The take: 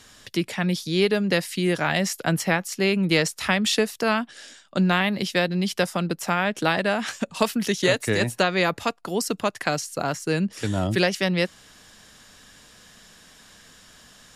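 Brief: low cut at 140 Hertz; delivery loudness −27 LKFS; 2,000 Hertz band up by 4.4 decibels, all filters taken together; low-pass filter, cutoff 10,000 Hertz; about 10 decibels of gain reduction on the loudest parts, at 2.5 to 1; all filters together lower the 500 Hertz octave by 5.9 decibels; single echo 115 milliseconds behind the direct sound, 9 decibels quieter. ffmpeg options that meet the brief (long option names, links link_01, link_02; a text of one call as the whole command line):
ffmpeg -i in.wav -af "highpass=140,lowpass=10000,equalizer=frequency=500:width_type=o:gain=-8,equalizer=frequency=2000:width_type=o:gain=6,acompressor=threshold=-31dB:ratio=2.5,aecho=1:1:115:0.355,volume=4dB" out.wav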